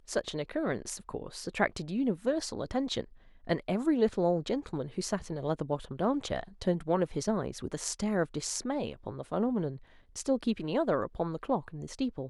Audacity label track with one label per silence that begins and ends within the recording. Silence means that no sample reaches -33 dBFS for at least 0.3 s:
3.020000	3.490000	silence
9.740000	10.170000	silence